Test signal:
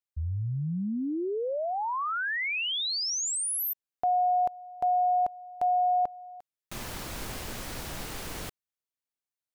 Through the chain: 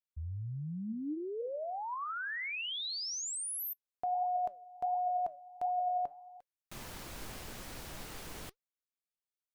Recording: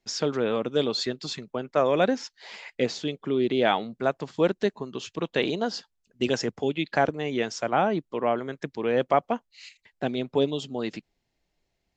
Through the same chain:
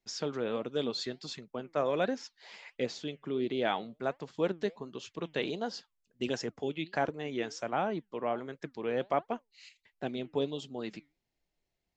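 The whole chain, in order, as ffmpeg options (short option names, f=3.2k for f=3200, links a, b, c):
-af "flanger=delay=1.7:depth=5.5:regen=86:speed=1.4:shape=triangular,volume=-3.5dB"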